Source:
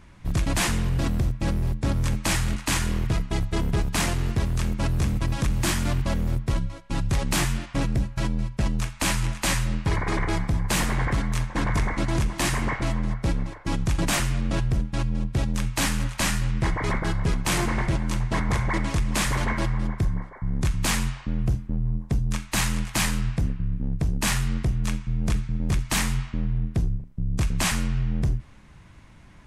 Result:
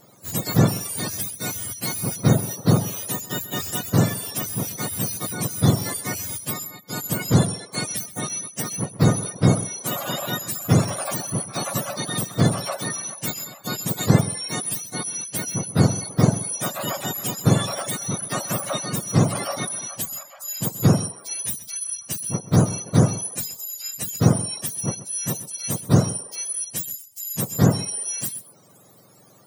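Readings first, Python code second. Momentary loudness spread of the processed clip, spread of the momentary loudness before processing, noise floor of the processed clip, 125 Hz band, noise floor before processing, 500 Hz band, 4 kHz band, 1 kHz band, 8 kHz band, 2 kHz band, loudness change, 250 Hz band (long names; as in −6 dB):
8 LU, 4 LU, −48 dBFS, +2.5 dB, −47 dBFS, +6.0 dB, +0.5 dB, +0.5 dB, +6.5 dB, −4.5 dB, +2.5 dB, +4.0 dB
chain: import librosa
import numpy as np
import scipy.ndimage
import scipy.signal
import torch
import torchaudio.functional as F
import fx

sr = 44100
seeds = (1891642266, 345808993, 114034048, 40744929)

y = fx.octave_mirror(x, sr, pivot_hz=1100.0)
y = fx.dereverb_blind(y, sr, rt60_s=0.57)
y = y + 10.0 ** (-16.0 / 20.0) * np.pad(y, (int(129 * sr / 1000.0), 0))[:len(y)]
y = y * 10.0 ** (3.5 / 20.0)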